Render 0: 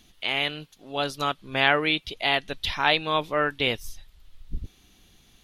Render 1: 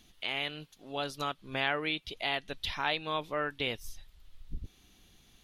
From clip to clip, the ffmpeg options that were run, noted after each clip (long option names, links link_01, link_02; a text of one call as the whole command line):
ffmpeg -i in.wav -af "acompressor=threshold=-33dB:ratio=1.5,volume=-4dB" out.wav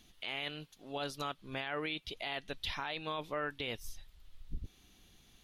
ffmpeg -i in.wav -af "alimiter=level_in=1.5dB:limit=-24dB:level=0:latency=1:release=26,volume=-1.5dB,volume=-1.5dB" out.wav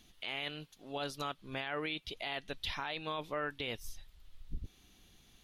ffmpeg -i in.wav -af anull out.wav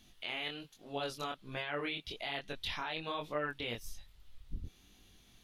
ffmpeg -i in.wav -af "flanger=delay=20:depth=5.4:speed=1.2,volume=3dB" out.wav